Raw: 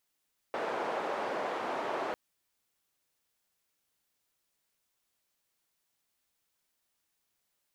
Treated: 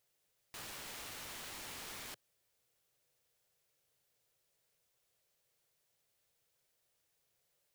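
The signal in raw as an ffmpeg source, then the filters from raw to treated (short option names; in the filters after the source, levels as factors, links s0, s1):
-f lavfi -i "anoisesrc=c=white:d=1.6:r=44100:seed=1,highpass=f=510,lowpass=f=710,volume=-11.1dB"
-af "asoftclip=type=hard:threshold=0.0119,equalizer=f=125:t=o:w=1:g=9,equalizer=f=250:t=o:w=1:g=-8,equalizer=f=500:t=o:w=1:g=9,equalizer=f=1000:t=o:w=1:g=-4,aeval=exprs='(mod(141*val(0)+1,2)-1)/141':c=same"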